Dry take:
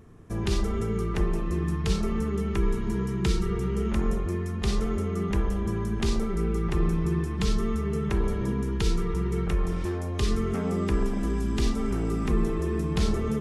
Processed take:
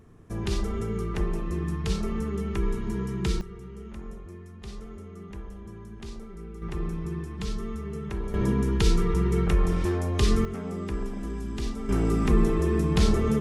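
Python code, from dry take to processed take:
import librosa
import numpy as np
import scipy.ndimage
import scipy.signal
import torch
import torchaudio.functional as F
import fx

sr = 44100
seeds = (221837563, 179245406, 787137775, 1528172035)

y = fx.gain(x, sr, db=fx.steps((0.0, -2.0), (3.41, -14.0), (6.62, -6.5), (8.34, 3.5), (10.45, -6.0), (11.89, 3.5)))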